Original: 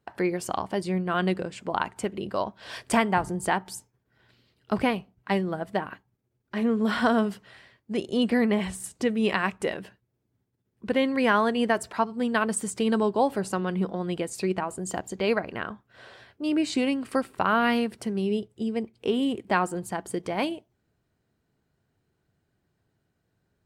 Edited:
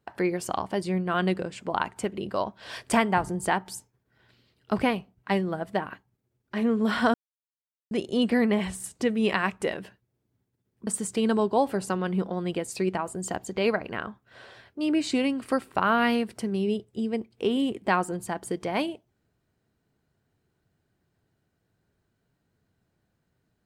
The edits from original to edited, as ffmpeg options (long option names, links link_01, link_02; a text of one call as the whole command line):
ffmpeg -i in.wav -filter_complex "[0:a]asplit=4[link_01][link_02][link_03][link_04];[link_01]atrim=end=7.14,asetpts=PTS-STARTPTS,afade=type=out:start_time=7.136:duration=0.004:curve=hsin[link_05];[link_02]atrim=start=7.14:end=7.91,asetpts=PTS-STARTPTS,volume=0[link_06];[link_03]atrim=start=7.91:end=10.872,asetpts=PTS-STARTPTS,afade=type=in:duration=0.004:curve=hsin[link_07];[link_04]atrim=start=12.498[link_08];[link_05][link_06][link_07]concat=n=3:v=0:a=1[link_09];[link_09][link_08]acrossfade=duration=0.004:curve1=hsin:curve2=hsin" out.wav